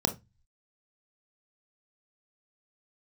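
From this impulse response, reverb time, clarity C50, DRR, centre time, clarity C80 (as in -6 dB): 0.20 s, 15.0 dB, 6.0 dB, 9 ms, 25.5 dB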